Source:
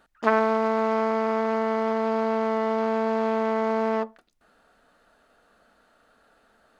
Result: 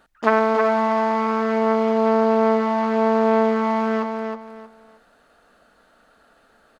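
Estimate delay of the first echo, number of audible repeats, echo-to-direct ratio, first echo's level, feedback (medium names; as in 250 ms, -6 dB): 315 ms, 3, -5.0 dB, -5.5 dB, 25%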